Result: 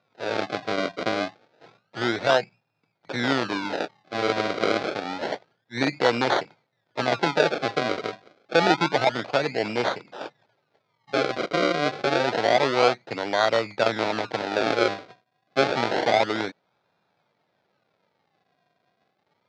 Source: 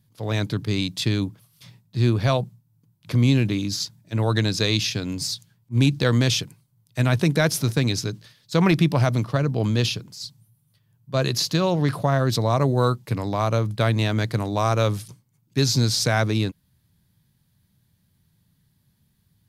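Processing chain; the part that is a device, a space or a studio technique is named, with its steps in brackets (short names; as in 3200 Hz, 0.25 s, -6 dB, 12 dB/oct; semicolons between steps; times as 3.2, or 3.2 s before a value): circuit-bent sampling toy (decimation with a swept rate 34×, swing 100% 0.28 Hz; speaker cabinet 520–4400 Hz, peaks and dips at 1100 Hz -7 dB, 1800 Hz -4 dB, 2900 Hz -7 dB); gain +6.5 dB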